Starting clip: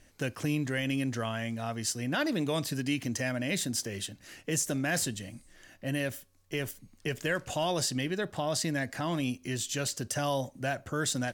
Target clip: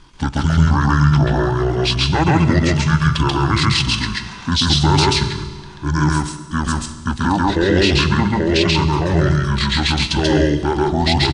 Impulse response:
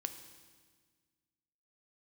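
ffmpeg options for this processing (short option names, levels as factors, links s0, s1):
-filter_complex "[0:a]asetrate=24046,aresample=44100,atempo=1.83401,acontrast=26,asplit=2[s0][s1];[1:a]atrim=start_sample=2205,asetrate=52920,aresample=44100,adelay=135[s2];[s1][s2]afir=irnorm=-1:irlink=0,volume=1.5[s3];[s0][s3]amix=inputs=2:normalize=0,volume=2.51"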